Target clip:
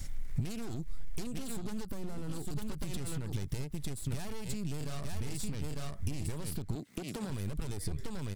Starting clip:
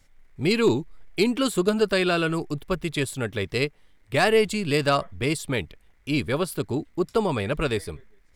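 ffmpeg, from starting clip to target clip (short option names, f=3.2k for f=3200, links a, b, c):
-filter_complex "[0:a]asettb=1/sr,asplit=3[a][b][c];[a]atrim=end=4.774[d];[b]atrim=start=4.77:end=5.55,asetpts=PTS-STARTPTS,afade=t=in:d=0.004:c=qsin,afade=t=out:st=0.776:d=0.004:c=qsin,asplit=2[e][f];[f]adelay=34,volume=-4dB[g];[e][g]amix=inputs=2:normalize=0,atrim=end_sample=34398[h];[c]atrim=start=5.546[i];[d][h]acrossfade=d=0.004:c1=hsin:c2=qsin[j];[j][i]acrossfade=d=0.004:c1=qsin:c2=hsin,aeval=exprs='0.447*(cos(1*acos(clip(val(0)/0.447,-1,1)))-cos(1*PI/2))+0.126*(cos(6*acos(clip(val(0)/0.447,-1,1)))-cos(6*PI/2))':c=same,aecho=1:1:900:0.224,alimiter=limit=-23dB:level=0:latency=1:release=139,asettb=1/sr,asplit=3[k][l][m];[k]atrim=end=6.754[n];[l]atrim=start=6.75:end=7.3,asetpts=PTS-STARTPTS,afade=t=in:d=0.004:c=qsin,afade=t=out:st=0.546:d=0.004:c=qsin,highpass=f=150:w=0.5412,highpass=f=150:w=1.3066[o];[m]atrim=start=7.296[p];[n][o]acrossfade=d=0.004:c1=hsin:c2=qsin[q];[q][p]acrossfade=d=0.004:c1=qsin:c2=hsin,acrossover=split=1500|5900[r][s][t];[r]acompressor=threshold=-38dB:ratio=4[u];[s]acompressor=threshold=-50dB:ratio=4[v];[t]acompressor=threshold=-54dB:ratio=4[w];[u][v][w]amix=inputs=3:normalize=0,asplit=3[x][y][z];[x]afade=t=out:st=1.85:d=0.02[aa];[y]equalizer=f=4k:t=o:w=2.8:g=-12,afade=t=in:st=1.85:d=0.02,afade=t=out:st=2.27:d=0.02[ab];[z]afade=t=in:st=2.27:d=0.02[ac];[aa][ab][ac]amix=inputs=3:normalize=0,asoftclip=type=hard:threshold=-35dB,acompressor=threshold=-50dB:ratio=6,bass=f=250:g=14,treble=f=4k:g=10,volume=8dB"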